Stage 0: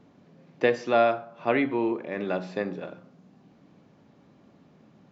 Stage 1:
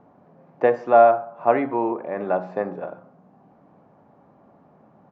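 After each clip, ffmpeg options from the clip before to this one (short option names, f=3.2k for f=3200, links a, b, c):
-af "firequalizer=gain_entry='entry(310,0);entry(740,11);entry(2100,-5);entry(3500,-14)':delay=0.05:min_phase=1"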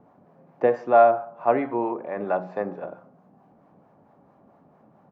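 -filter_complex "[0:a]acrossover=split=580[a][b];[a]aeval=exprs='val(0)*(1-0.5/2+0.5/2*cos(2*PI*4.5*n/s))':c=same[c];[b]aeval=exprs='val(0)*(1-0.5/2-0.5/2*cos(2*PI*4.5*n/s))':c=same[d];[c][d]amix=inputs=2:normalize=0"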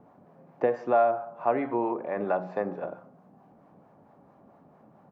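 -af "acompressor=threshold=-24dB:ratio=2"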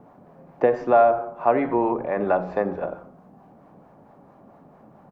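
-filter_complex "[0:a]asplit=4[a][b][c][d];[b]adelay=87,afreqshift=-110,volume=-19dB[e];[c]adelay=174,afreqshift=-220,volume=-26.7dB[f];[d]adelay=261,afreqshift=-330,volume=-34.5dB[g];[a][e][f][g]amix=inputs=4:normalize=0,volume=6dB"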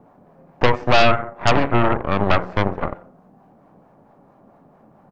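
-af "aeval=exprs='0.531*(cos(1*acos(clip(val(0)/0.531,-1,1)))-cos(1*PI/2))+0.211*(cos(8*acos(clip(val(0)/0.531,-1,1)))-cos(8*PI/2))':c=same,volume=-1dB"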